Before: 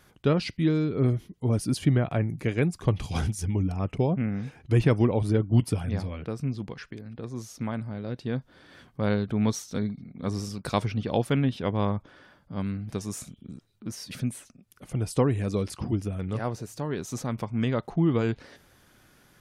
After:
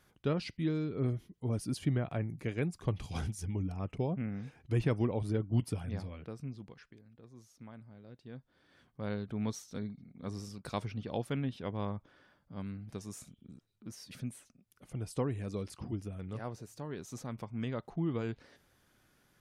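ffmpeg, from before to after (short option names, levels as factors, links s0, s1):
-af "volume=0.944,afade=t=out:st=5.96:d=1.14:silence=0.316228,afade=t=in:st=8.23:d=1.12:silence=0.375837"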